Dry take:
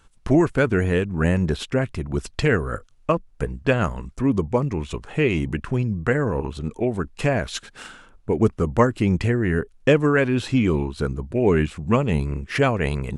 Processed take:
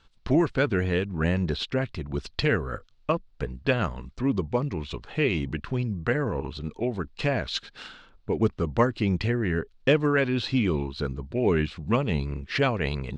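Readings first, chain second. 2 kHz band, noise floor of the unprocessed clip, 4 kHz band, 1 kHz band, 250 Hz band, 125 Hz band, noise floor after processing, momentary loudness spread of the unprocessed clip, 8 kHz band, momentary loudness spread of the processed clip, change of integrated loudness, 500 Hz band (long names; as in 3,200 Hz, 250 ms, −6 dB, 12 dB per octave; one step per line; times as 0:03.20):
−3.5 dB, −53 dBFS, +1.5 dB, −4.5 dB, −5.0 dB, −5.0 dB, −58 dBFS, 9 LU, −10.5 dB, 8 LU, −4.5 dB, −5.0 dB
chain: low-pass with resonance 4,200 Hz, resonance Q 2.7
level −5 dB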